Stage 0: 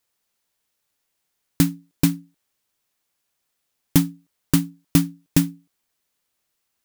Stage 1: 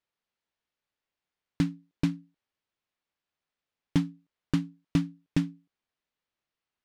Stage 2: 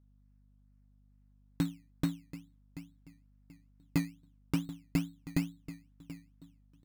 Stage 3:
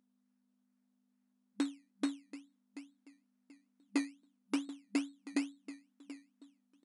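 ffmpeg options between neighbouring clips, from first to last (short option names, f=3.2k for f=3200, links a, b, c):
-af "lowpass=3.6k,volume=-8dB"
-filter_complex "[0:a]asplit=2[a][b];[b]adelay=733,lowpass=f=1.9k:p=1,volume=-14.5dB,asplit=2[c][d];[d]adelay=733,lowpass=f=1.9k:p=1,volume=0.29,asplit=2[e][f];[f]adelay=733,lowpass=f=1.9k:p=1,volume=0.29[g];[a][c][e][g]amix=inputs=4:normalize=0,acrusher=samples=16:mix=1:aa=0.000001:lfo=1:lforange=9.6:lforate=2.3,aeval=exprs='val(0)+0.00126*(sin(2*PI*50*n/s)+sin(2*PI*2*50*n/s)/2+sin(2*PI*3*50*n/s)/3+sin(2*PI*4*50*n/s)/4+sin(2*PI*5*50*n/s)/5)':c=same,volume=-5dB"
-af "afftfilt=real='re*between(b*sr/4096,200,11000)':imag='im*between(b*sr/4096,200,11000)':win_size=4096:overlap=0.75"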